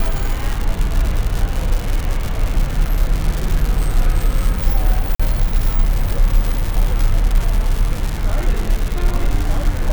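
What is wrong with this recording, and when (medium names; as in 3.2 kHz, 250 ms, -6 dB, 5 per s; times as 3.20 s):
crackle 230 per s -18 dBFS
5.15–5.20 s: dropout 45 ms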